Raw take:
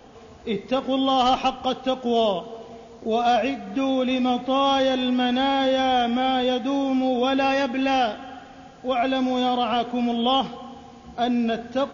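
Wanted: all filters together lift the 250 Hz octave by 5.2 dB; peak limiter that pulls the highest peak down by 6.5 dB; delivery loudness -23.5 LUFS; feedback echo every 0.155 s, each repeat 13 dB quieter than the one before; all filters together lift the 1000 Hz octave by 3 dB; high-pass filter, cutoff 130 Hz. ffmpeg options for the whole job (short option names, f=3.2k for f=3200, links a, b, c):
-af "highpass=130,equalizer=f=250:t=o:g=5.5,equalizer=f=1k:t=o:g=4,alimiter=limit=-13dB:level=0:latency=1,aecho=1:1:155|310|465:0.224|0.0493|0.0108,volume=-2dB"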